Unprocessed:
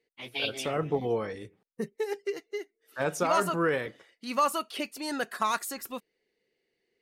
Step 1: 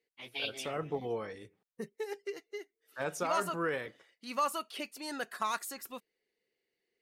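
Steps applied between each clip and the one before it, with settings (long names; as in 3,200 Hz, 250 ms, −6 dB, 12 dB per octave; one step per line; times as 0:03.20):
low-shelf EQ 470 Hz −4 dB
level −5 dB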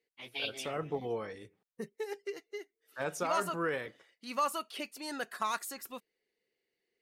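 no processing that can be heard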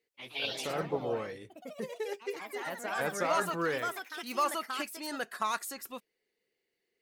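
delay with pitch and tempo change per echo 144 ms, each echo +3 semitones, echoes 3, each echo −6 dB
level +1.5 dB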